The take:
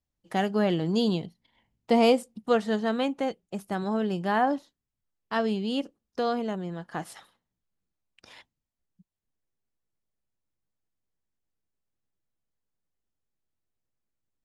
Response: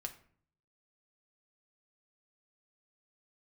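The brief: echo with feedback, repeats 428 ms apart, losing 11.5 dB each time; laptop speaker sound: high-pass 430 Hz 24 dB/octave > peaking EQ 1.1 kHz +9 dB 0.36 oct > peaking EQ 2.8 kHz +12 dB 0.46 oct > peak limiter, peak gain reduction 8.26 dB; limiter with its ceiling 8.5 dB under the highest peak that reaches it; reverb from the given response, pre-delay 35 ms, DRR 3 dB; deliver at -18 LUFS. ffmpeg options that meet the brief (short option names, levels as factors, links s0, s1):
-filter_complex "[0:a]alimiter=limit=0.106:level=0:latency=1,aecho=1:1:428|856|1284:0.266|0.0718|0.0194,asplit=2[s0][s1];[1:a]atrim=start_sample=2205,adelay=35[s2];[s1][s2]afir=irnorm=-1:irlink=0,volume=0.891[s3];[s0][s3]amix=inputs=2:normalize=0,highpass=f=430:w=0.5412,highpass=f=430:w=1.3066,equalizer=f=1100:t=o:w=0.36:g=9,equalizer=f=2800:t=o:w=0.46:g=12,volume=5.01,alimiter=limit=0.473:level=0:latency=1"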